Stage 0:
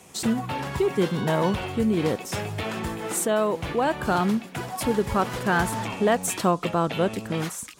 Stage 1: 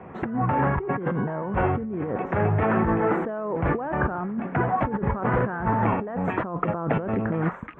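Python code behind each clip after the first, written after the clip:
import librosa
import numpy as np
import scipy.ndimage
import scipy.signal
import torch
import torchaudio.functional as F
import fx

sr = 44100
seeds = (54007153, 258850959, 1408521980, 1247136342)

y = scipy.signal.sosfilt(scipy.signal.cheby2(4, 50, 4400.0, 'lowpass', fs=sr, output='sos'), x)
y = fx.over_compress(y, sr, threshold_db=-31.0, ratio=-1.0)
y = F.gain(torch.from_numpy(y), 5.5).numpy()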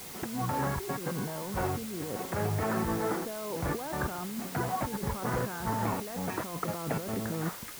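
y = fx.quant_dither(x, sr, seeds[0], bits=6, dither='triangular')
y = y + 10.0 ** (-52.0 / 20.0) * np.sin(2.0 * np.pi * 2100.0 * np.arange(len(y)) / sr)
y = F.gain(torch.from_numpy(y), -8.5).numpy()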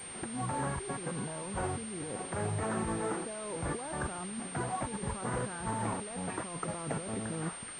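y = fx.pwm(x, sr, carrier_hz=8700.0)
y = F.gain(torch.from_numpy(y), -3.5).numpy()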